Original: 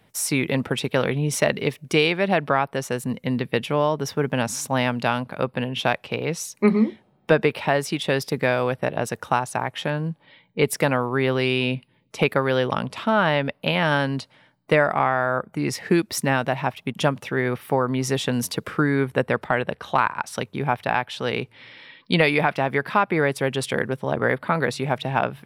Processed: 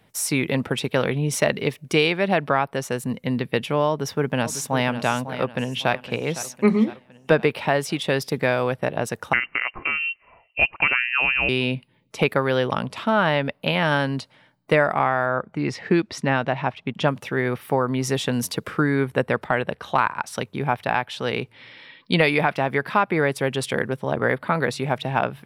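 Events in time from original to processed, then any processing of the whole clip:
3.89–4.9 echo throw 0.55 s, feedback 35%, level -11 dB
5.4–5.91 echo throw 0.51 s, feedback 55%, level -14 dB
9.33–11.49 inverted band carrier 2900 Hz
15.26–17.08 LPF 4400 Hz

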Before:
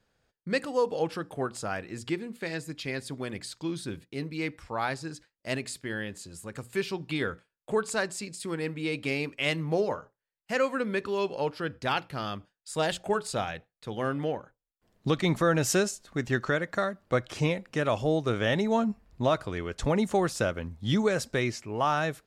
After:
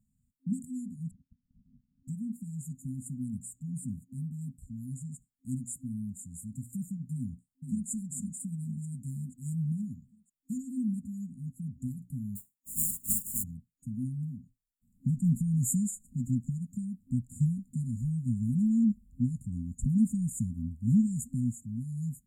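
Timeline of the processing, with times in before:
1.11–2.08 inverted band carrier 3400 Hz
7.14–7.89 echo throw 0.48 s, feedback 50%, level -6 dB
12.35–13.42 spectral contrast lowered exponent 0.11
whole clip: FFT band-reject 260–6800 Hz; bell 630 Hz +10.5 dB 2 oct; gain +1 dB

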